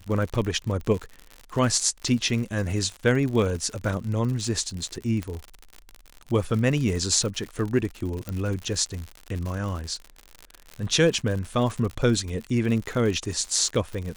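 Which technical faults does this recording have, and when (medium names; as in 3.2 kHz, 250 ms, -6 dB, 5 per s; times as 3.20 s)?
crackle 85 per s -30 dBFS
5.23 s: pop -18 dBFS
8.29 s: pop -17 dBFS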